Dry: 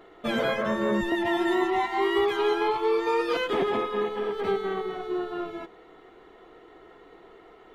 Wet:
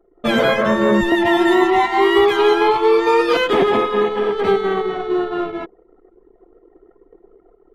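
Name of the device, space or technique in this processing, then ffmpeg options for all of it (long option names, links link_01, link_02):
voice memo with heavy noise removal: -af "anlmdn=0.158,dynaudnorm=framelen=110:gausssize=3:maxgain=5dB,volume=5.5dB"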